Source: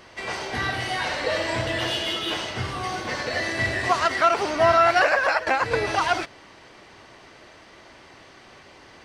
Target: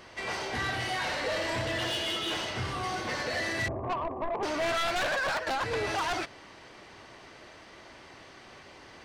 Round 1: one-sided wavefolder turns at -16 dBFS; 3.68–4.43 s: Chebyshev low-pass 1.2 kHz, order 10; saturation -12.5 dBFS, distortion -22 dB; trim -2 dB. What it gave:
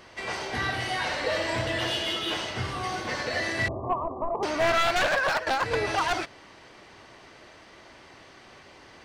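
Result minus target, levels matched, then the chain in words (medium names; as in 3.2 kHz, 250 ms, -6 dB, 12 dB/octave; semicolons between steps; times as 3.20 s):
saturation: distortion -13 dB
one-sided wavefolder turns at -16 dBFS; 3.68–4.43 s: Chebyshev low-pass 1.2 kHz, order 10; saturation -24.5 dBFS, distortion -9 dB; trim -2 dB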